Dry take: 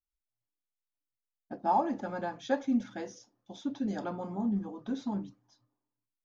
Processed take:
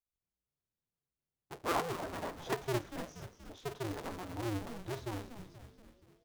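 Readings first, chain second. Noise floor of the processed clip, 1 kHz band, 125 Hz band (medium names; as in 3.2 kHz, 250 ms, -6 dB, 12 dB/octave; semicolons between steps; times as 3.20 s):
under -85 dBFS, -7.0 dB, +1.5 dB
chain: cycle switcher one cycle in 2, inverted; frequency-shifting echo 238 ms, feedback 58%, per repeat -110 Hz, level -10.5 dB; trim -6.5 dB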